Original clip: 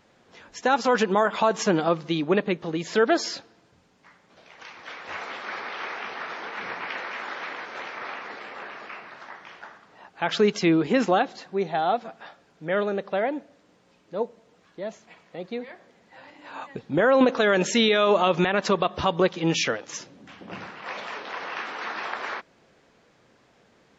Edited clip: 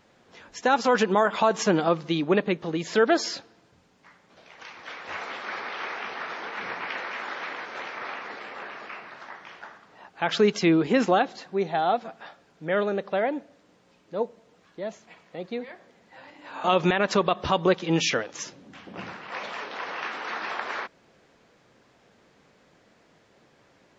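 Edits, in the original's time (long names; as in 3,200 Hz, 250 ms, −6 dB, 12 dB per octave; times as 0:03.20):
0:16.64–0:18.18: remove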